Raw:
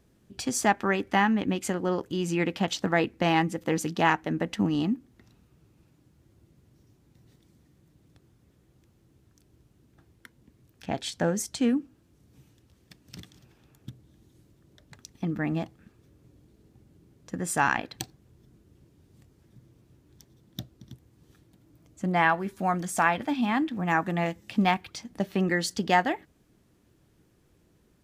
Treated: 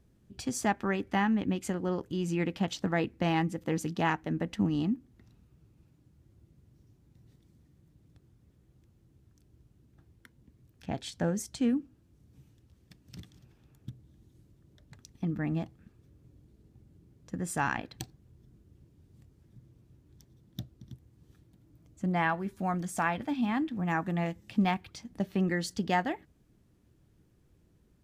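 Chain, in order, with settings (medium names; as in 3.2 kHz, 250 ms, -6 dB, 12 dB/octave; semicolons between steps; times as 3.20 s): bass shelf 210 Hz +9.5 dB; trim -7 dB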